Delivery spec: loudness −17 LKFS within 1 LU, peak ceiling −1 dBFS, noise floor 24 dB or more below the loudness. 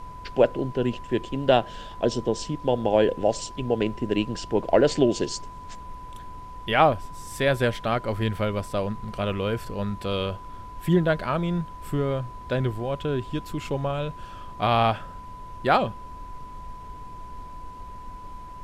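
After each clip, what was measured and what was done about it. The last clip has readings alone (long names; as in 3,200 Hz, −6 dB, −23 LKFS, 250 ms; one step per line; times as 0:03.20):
interfering tone 1,000 Hz; level of the tone −40 dBFS; background noise floor −41 dBFS; target noise floor −50 dBFS; integrated loudness −25.5 LKFS; sample peak −4.5 dBFS; target loudness −17.0 LKFS
→ notch filter 1,000 Hz, Q 30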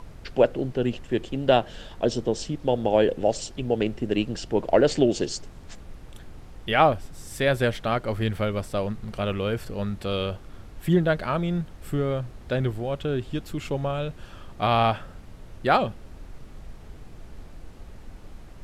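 interfering tone none found; background noise floor −45 dBFS; target noise floor −50 dBFS
→ noise reduction from a noise print 6 dB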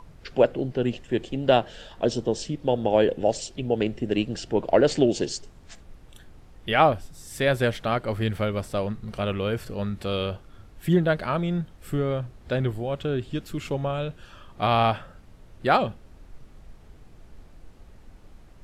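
background noise floor −50 dBFS; integrated loudness −25.5 LKFS; sample peak −5.0 dBFS; target loudness −17.0 LKFS
→ level +8.5 dB
brickwall limiter −1 dBFS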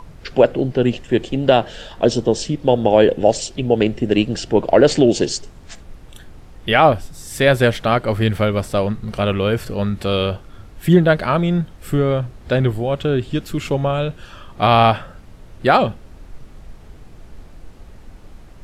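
integrated loudness −17.5 LKFS; sample peak −1.0 dBFS; background noise floor −42 dBFS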